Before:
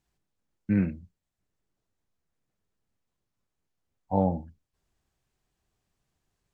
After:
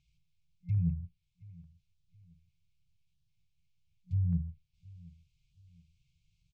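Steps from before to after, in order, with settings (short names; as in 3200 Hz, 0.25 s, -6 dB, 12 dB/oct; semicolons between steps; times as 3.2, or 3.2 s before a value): block floating point 7-bit; treble ducked by the level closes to 680 Hz, closed at -26 dBFS; FFT band-reject 180–2100 Hz; reverse; compressor, threshold -34 dBFS, peak gain reduction 6 dB; reverse; air absorption 130 m; on a send: feedback echo 0.721 s, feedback 35%, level -22 dB; on the sum: stepped notch 6.7 Hz 470–2000 Hz; gain +8 dB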